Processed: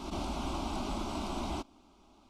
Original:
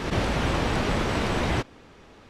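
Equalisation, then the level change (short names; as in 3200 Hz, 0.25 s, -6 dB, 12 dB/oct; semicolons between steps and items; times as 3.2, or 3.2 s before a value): fixed phaser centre 480 Hz, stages 6; -7.5 dB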